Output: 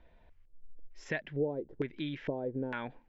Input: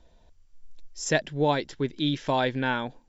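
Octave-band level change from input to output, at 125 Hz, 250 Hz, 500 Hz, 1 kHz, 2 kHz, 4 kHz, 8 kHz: −10.0 dB, −9.0 dB, −8.0 dB, −17.0 dB, −10.5 dB, −17.0 dB, can't be measured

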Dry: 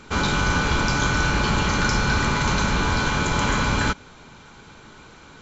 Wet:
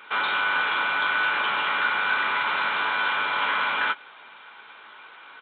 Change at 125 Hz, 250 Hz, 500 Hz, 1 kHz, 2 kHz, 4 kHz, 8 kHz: below −30 dB, −20.5 dB, −9.0 dB, 0.0 dB, +1.5 dB, −2.0 dB, can't be measured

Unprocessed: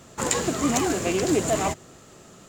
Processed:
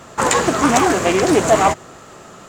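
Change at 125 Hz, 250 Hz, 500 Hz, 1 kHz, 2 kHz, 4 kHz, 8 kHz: +5.5, +7.0, +9.0, +13.0, +11.5, +7.0, +4.5 decibels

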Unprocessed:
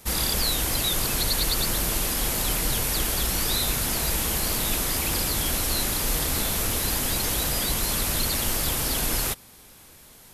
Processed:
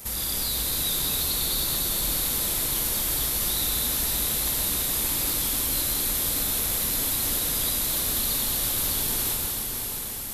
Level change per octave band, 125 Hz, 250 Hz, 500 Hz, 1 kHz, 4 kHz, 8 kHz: −5.5, −4.0, −5.0, −5.0, −1.5, +0.5 decibels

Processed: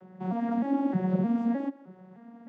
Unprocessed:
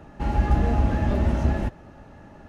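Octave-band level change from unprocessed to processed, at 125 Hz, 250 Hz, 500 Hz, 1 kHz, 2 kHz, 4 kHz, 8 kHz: −11.5 dB, +2.0 dB, −4.5 dB, −6.0 dB, −11.0 dB, below −10 dB, can't be measured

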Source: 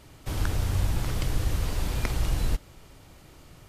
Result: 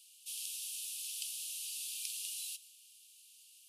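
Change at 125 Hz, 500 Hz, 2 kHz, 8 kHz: below −40 dB, below −40 dB, −14.5 dB, +3.0 dB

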